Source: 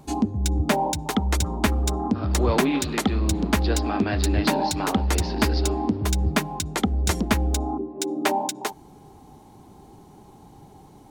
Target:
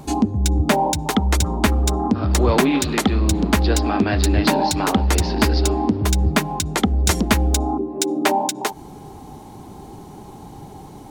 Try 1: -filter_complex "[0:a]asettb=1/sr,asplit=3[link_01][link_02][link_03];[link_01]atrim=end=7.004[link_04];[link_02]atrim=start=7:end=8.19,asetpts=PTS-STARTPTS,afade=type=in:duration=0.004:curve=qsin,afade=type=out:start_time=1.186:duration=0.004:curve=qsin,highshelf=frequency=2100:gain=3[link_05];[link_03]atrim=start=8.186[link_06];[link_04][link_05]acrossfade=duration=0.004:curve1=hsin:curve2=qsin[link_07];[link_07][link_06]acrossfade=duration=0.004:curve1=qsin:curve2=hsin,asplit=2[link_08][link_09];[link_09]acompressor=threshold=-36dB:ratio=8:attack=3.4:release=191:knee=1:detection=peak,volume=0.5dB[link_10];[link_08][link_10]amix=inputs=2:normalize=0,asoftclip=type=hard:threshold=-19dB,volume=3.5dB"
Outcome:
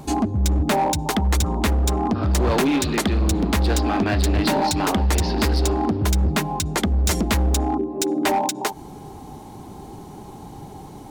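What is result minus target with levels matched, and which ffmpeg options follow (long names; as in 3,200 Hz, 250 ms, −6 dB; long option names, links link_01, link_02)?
hard clipping: distortion +21 dB
-filter_complex "[0:a]asettb=1/sr,asplit=3[link_01][link_02][link_03];[link_01]atrim=end=7.004[link_04];[link_02]atrim=start=7:end=8.19,asetpts=PTS-STARTPTS,afade=type=in:duration=0.004:curve=qsin,afade=type=out:start_time=1.186:duration=0.004:curve=qsin,highshelf=frequency=2100:gain=3[link_05];[link_03]atrim=start=8.186[link_06];[link_04][link_05]acrossfade=duration=0.004:curve1=hsin:curve2=qsin[link_07];[link_07][link_06]acrossfade=duration=0.004:curve1=qsin:curve2=hsin,asplit=2[link_08][link_09];[link_09]acompressor=threshold=-36dB:ratio=8:attack=3.4:release=191:knee=1:detection=peak,volume=0.5dB[link_10];[link_08][link_10]amix=inputs=2:normalize=0,asoftclip=type=hard:threshold=-9.5dB,volume=3.5dB"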